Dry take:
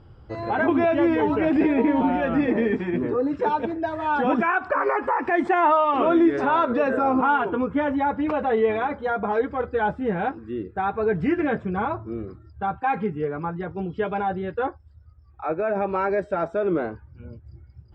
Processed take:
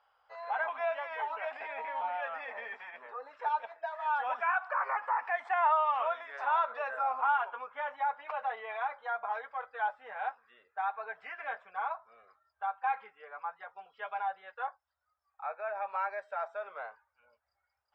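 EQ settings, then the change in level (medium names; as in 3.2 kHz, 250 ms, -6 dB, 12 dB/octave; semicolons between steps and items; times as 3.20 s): inverse Chebyshev high-pass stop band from 360 Hz, stop band 40 dB; low-pass 2.5 kHz 6 dB/octave; -6.0 dB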